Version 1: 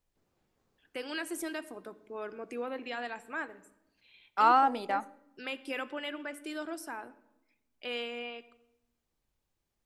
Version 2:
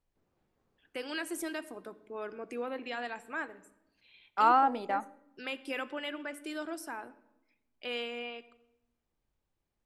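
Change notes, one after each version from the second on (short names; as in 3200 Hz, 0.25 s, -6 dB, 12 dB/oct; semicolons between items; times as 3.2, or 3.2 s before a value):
second voice: add high shelf 3500 Hz -9.5 dB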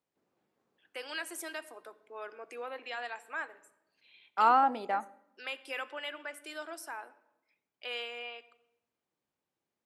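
first voice: add HPF 570 Hz 12 dB/oct; master: add HPF 200 Hz 12 dB/oct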